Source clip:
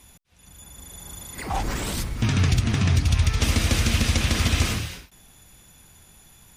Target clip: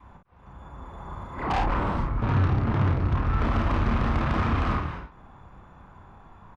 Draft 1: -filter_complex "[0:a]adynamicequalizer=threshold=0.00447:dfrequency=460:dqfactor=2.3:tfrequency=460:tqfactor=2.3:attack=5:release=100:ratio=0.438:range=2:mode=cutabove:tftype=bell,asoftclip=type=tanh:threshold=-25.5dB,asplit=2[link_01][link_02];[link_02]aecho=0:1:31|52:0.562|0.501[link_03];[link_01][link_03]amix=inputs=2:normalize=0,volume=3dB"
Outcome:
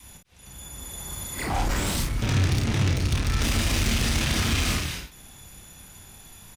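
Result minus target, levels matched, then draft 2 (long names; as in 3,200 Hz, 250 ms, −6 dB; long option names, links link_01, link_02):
1,000 Hz band −6.0 dB
-filter_complex "[0:a]adynamicequalizer=threshold=0.00447:dfrequency=460:dqfactor=2.3:tfrequency=460:tqfactor=2.3:attack=5:release=100:ratio=0.438:range=2:mode=cutabove:tftype=bell,lowpass=frequency=1100:width_type=q:width=2.9,asoftclip=type=tanh:threshold=-25.5dB,asplit=2[link_01][link_02];[link_02]aecho=0:1:31|52:0.562|0.501[link_03];[link_01][link_03]amix=inputs=2:normalize=0,volume=3dB"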